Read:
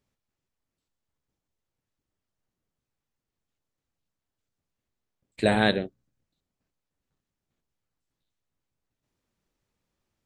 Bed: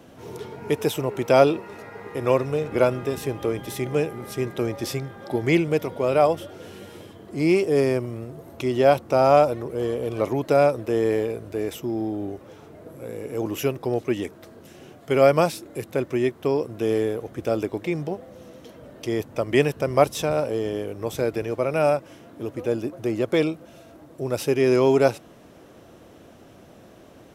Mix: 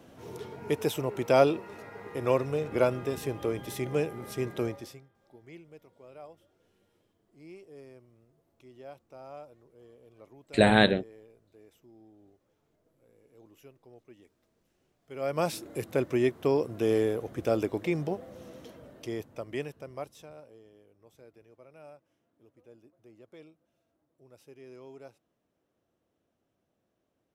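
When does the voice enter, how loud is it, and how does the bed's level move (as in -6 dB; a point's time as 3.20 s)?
5.15 s, +1.5 dB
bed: 4.67 s -5.5 dB
5.11 s -29.5 dB
14.97 s -29.5 dB
15.54 s -3 dB
18.60 s -3 dB
20.71 s -30.5 dB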